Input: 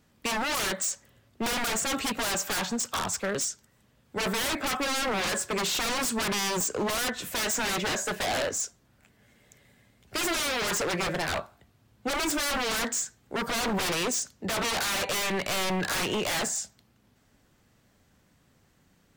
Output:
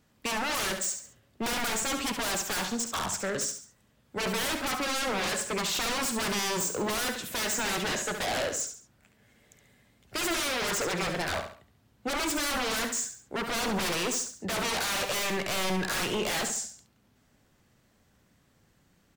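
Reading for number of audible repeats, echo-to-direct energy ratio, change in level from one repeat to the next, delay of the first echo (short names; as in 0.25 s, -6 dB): 3, -7.5 dB, -9.0 dB, 69 ms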